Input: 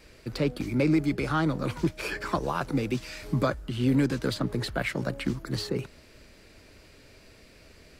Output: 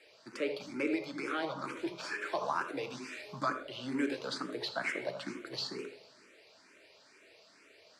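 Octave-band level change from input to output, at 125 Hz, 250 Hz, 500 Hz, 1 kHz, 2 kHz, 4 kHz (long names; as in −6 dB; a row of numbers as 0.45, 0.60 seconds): −23.0, −11.5, −6.5, −4.0, −3.5, −3.5 decibels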